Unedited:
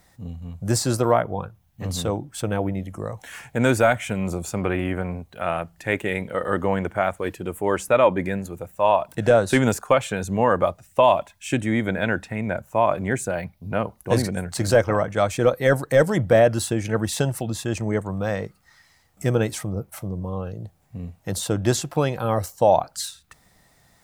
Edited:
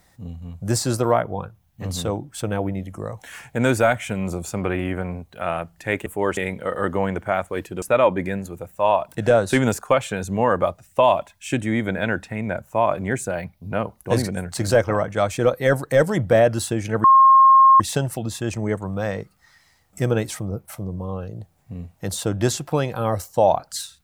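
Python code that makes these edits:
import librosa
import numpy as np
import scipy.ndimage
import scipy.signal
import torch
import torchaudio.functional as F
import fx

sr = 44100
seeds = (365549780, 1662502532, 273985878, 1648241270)

y = fx.edit(x, sr, fx.move(start_s=7.51, length_s=0.31, to_s=6.06),
    fx.insert_tone(at_s=17.04, length_s=0.76, hz=1070.0, db=-8.0), tone=tone)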